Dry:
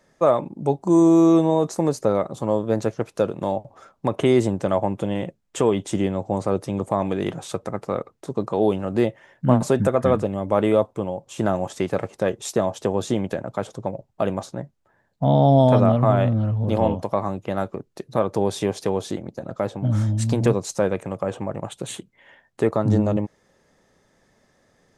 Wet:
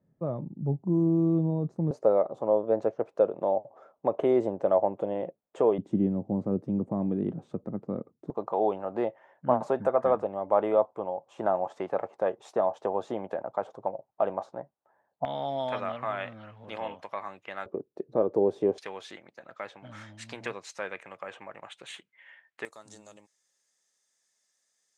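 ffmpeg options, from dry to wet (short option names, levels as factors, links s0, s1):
-af "asetnsamples=n=441:p=0,asendcmd='1.91 bandpass f 600;5.78 bandpass f 220;8.3 bandpass f 790;15.25 bandpass f 2100;17.66 bandpass f 410;18.78 bandpass f 2100;22.65 bandpass f 7700',bandpass=f=140:t=q:w=1.7:csg=0"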